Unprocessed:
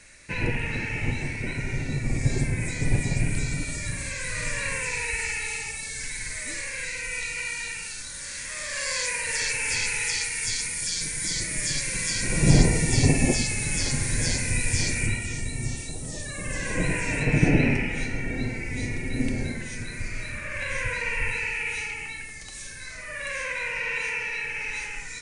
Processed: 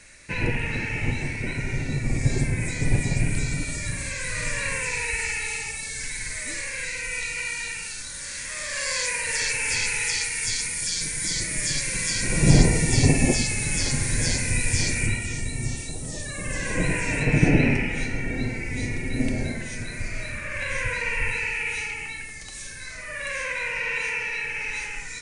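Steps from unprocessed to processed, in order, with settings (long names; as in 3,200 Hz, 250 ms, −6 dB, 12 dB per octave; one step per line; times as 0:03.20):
0:19.19–0:20.34: parametric band 650 Hz +8 dB 0.26 octaves
level +1.5 dB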